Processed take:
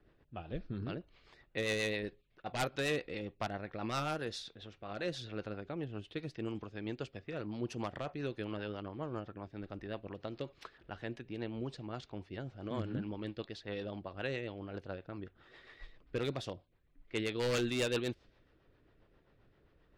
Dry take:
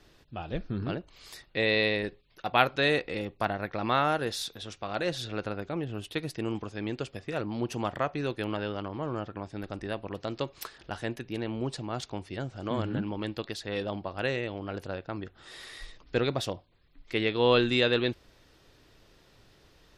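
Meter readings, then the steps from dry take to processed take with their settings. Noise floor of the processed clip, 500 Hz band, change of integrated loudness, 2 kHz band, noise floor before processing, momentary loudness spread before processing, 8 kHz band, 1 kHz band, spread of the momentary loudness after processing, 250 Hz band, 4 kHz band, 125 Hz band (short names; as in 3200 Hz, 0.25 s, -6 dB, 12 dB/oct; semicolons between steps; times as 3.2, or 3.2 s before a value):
-70 dBFS, -8.5 dB, -9.0 dB, -9.5 dB, -61 dBFS, 15 LU, -4.0 dB, -11.5 dB, 12 LU, -7.5 dB, -10.0 dB, -6.5 dB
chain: wavefolder -19 dBFS; rotary speaker horn 7.5 Hz; low-pass opened by the level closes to 1800 Hz, open at -26 dBFS; gain -5.5 dB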